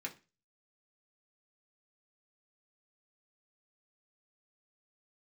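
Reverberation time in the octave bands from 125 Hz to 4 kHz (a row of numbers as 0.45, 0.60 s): 0.45, 0.35, 0.30, 0.30, 0.30, 0.30 s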